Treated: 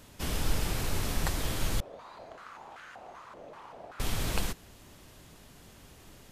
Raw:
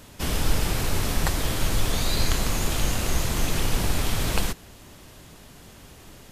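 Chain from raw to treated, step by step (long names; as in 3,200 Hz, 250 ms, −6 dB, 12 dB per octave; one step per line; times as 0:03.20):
0:01.80–0:04.00: band-pass on a step sequencer 5.2 Hz 570–1,500 Hz
level −6.5 dB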